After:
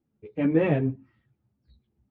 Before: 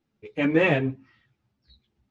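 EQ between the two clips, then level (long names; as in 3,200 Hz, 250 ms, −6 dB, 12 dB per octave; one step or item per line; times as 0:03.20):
high-pass filter 210 Hz 6 dB per octave
spectral tilt −4.5 dB per octave
−6.0 dB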